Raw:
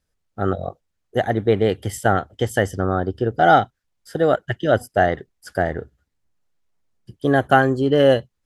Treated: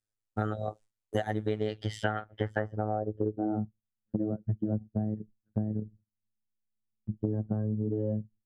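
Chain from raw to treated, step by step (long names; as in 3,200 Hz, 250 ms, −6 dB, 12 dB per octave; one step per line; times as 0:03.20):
phases set to zero 107 Hz
low-pass filter sweep 9,000 Hz → 210 Hz, 0:01.42–0:03.64
noise gate with hold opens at −50 dBFS
downward compressor 8 to 1, threshold −33 dBFS, peak gain reduction 20.5 dB
level +6 dB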